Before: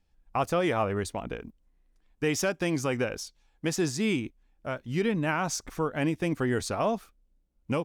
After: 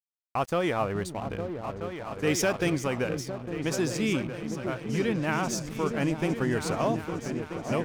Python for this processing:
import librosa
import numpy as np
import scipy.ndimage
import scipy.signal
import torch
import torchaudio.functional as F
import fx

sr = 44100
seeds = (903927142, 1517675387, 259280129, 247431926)

y = fx.echo_opening(x, sr, ms=428, hz=200, octaves=2, feedback_pct=70, wet_db=-3)
y = np.sign(y) * np.maximum(np.abs(y) - 10.0 ** (-45.0 / 20.0), 0.0)
y = fx.leveller(y, sr, passes=1, at=(2.27, 2.7))